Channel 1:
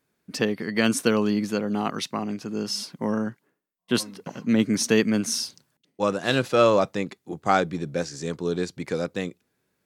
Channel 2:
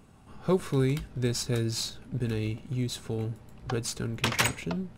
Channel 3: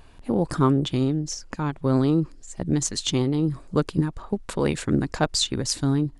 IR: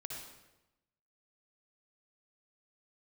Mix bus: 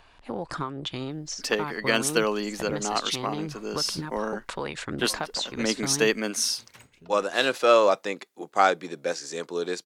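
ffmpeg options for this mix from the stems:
-filter_complex "[0:a]highpass=430,adelay=1100,volume=1.19[s0];[1:a]adelay=2350,volume=0.133[s1];[2:a]acrossover=split=590 6000:gain=0.224 1 0.224[s2][s3][s4];[s2][s3][s4]amix=inputs=3:normalize=0,acompressor=threshold=0.0355:ratio=12,volume=1.26,asplit=2[s5][s6];[s6]apad=whole_len=323062[s7];[s1][s7]sidechaincompress=threshold=0.00112:ratio=8:attack=23:release=569[s8];[s0][s8][s5]amix=inputs=3:normalize=0"

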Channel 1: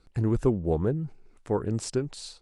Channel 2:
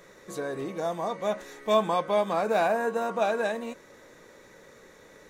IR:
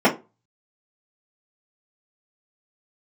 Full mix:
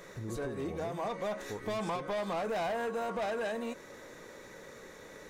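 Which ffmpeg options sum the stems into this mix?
-filter_complex "[0:a]volume=0.188,asplit=2[s0][s1];[1:a]asoftclip=type=tanh:threshold=0.0447,volume=1.33[s2];[s1]apad=whole_len=233660[s3];[s2][s3]sidechaincompress=threshold=0.00891:ratio=5:attack=21:release=213[s4];[s0][s4]amix=inputs=2:normalize=0,acompressor=threshold=0.02:ratio=3"

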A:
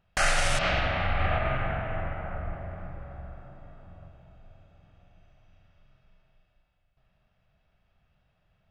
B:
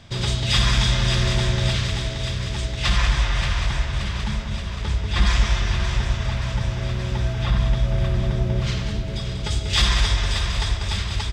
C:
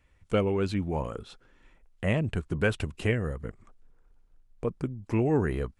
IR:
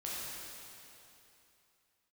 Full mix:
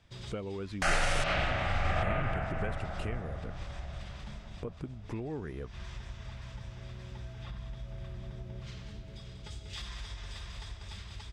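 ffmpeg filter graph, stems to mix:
-filter_complex "[0:a]adelay=650,volume=0.668[s0];[1:a]highshelf=f=7200:g=6.5,acompressor=threshold=0.126:ratio=6,volume=0.112[s1];[2:a]acompressor=threshold=0.0178:ratio=4,volume=0.794,asplit=2[s2][s3];[s3]apad=whole_len=499215[s4];[s1][s4]sidechaincompress=threshold=0.00251:ratio=8:attack=16:release=108[s5];[s0][s5][s2]amix=inputs=3:normalize=0,highshelf=f=5500:g=-5.5"

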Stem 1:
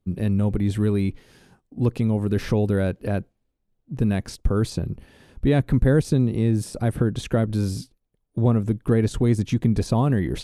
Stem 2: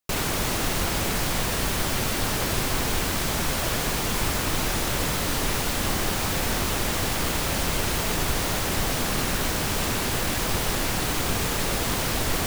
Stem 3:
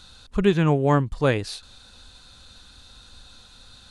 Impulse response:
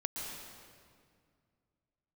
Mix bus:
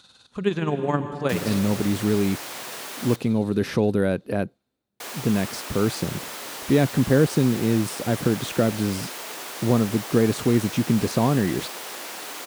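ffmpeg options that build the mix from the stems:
-filter_complex "[0:a]adelay=1250,volume=1.26[s0];[1:a]highpass=410,adelay=1200,volume=0.376,asplit=3[s1][s2][s3];[s1]atrim=end=3.16,asetpts=PTS-STARTPTS,afade=t=out:st=3.156:d=0.004:c=hsin[s4];[s2]atrim=start=3.16:end=5,asetpts=PTS-STARTPTS,volume=0[s5];[s3]atrim=start=5,asetpts=PTS-STARTPTS,afade=t=in:d=0.004:c=hsin[s6];[s4][s5][s6]concat=n=3:v=0:a=1,asplit=2[s7][s8];[s8]volume=0.133[s9];[2:a]tremolo=f=19:d=0.59,volume=0.596,asplit=2[s10][s11];[s11]volume=0.501[s12];[3:a]atrim=start_sample=2205[s13];[s9][s12]amix=inputs=2:normalize=0[s14];[s14][s13]afir=irnorm=-1:irlink=0[s15];[s0][s7][s10][s15]amix=inputs=4:normalize=0,highpass=160"

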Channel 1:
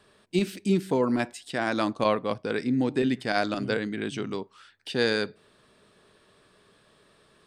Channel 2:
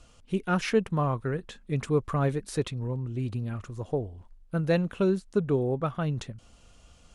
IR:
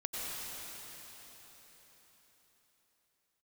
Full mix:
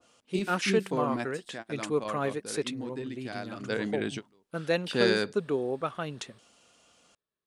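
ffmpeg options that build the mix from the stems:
-filter_complex "[0:a]volume=1.88,afade=t=out:st=1.27:d=0.4:silence=0.473151,afade=t=in:st=3.59:d=0.22:silence=0.251189[s0];[1:a]highpass=270,adynamicequalizer=threshold=0.00631:dfrequency=1600:dqfactor=0.7:tfrequency=1600:tqfactor=0.7:attack=5:release=100:ratio=0.375:range=2.5:mode=boostabove:tftype=highshelf,volume=0.841,asplit=2[s1][s2];[s2]apad=whole_len=329292[s3];[s0][s3]sidechaingate=range=0.0251:threshold=0.00282:ratio=16:detection=peak[s4];[s4][s1]amix=inputs=2:normalize=0"

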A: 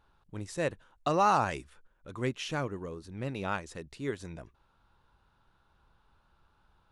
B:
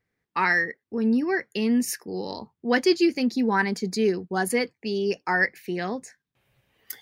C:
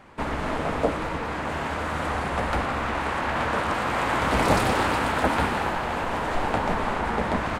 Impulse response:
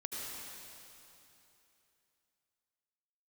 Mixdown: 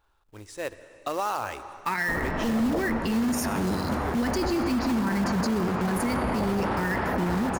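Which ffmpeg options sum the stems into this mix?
-filter_complex "[0:a]equalizer=f=160:t=o:w=0.96:g=-15,volume=0.794,asplit=2[s0][s1];[s1]volume=0.266[s2];[1:a]asubboost=boost=11:cutoff=190,adelay=1500,volume=1.19,asplit=2[s3][s4];[s4]volume=0.211[s5];[2:a]lowpass=f=1000:p=1,adelay=1900,volume=1[s6];[s0][s3]amix=inputs=2:normalize=0,acrusher=bits=3:mode=log:mix=0:aa=0.000001,alimiter=limit=0.133:level=0:latency=1:release=86,volume=1[s7];[3:a]atrim=start_sample=2205[s8];[s2][s5]amix=inputs=2:normalize=0[s9];[s9][s8]afir=irnorm=-1:irlink=0[s10];[s6][s7][s10]amix=inputs=3:normalize=0,alimiter=limit=0.119:level=0:latency=1:release=18"

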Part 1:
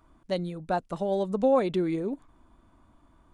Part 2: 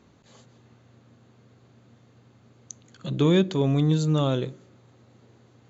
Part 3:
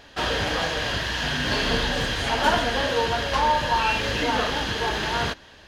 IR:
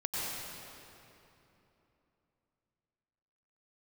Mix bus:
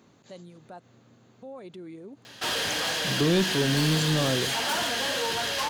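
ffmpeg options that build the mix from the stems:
-filter_complex "[0:a]alimiter=limit=0.0708:level=0:latency=1:release=114,volume=0.251,asplit=3[s0][s1][s2];[s0]atrim=end=0.85,asetpts=PTS-STARTPTS,afade=t=out:st=0.846:d=0.004:c=hsin[s3];[s1]atrim=start=0.85:end=1.42,asetpts=PTS-STARTPTS,volume=0[s4];[s2]atrim=start=1.42,asetpts=PTS-STARTPTS,afade=t=in:d=0.004:c=hsin[s5];[s3][s4][s5]concat=n=3:v=0:a=1,asplit=2[s6][s7];[1:a]volume=1[s8];[2:a]highshelf=f=2400:g=9,asoftclip=type=tanh:threshold=0.0891,adelay=2250,volume=0.708[s9];[s7]apad=whole_len=251354[s10];[s8][s10]sidechaincompress=threshold=0.00355:ratio=8:attack=16:release=111[s11];[s6][s11][s9]amix=inputs=3:normalize=0,highpass=130,highshelf=f=7700:g=7,asoftclip=type=tanh:threshold=0.15"

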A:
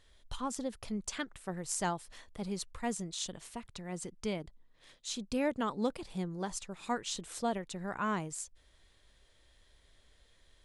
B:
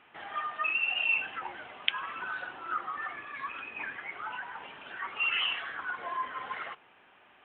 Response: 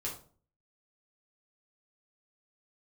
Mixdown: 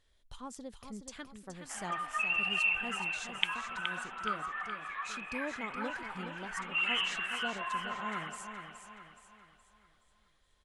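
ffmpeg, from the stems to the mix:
-filter_complex "[0:a]volume=0.398,asplit=2[s0][s1];[s1]volume=0.398[s2];[1:a]highpass=660,adelay=1550,volume=0.794,asplit=2[s3][s4];[s4]volume=0.422[s5];[s2][s5]amix=inputs=2:normalize=0,aecho=0:1:421|842|1263|1684|2105|2526:1|0.43|0.185|0.0795|0.0342|0.0147[s6];[s0][s3][s6]amix=inputs=3:normalize=0"

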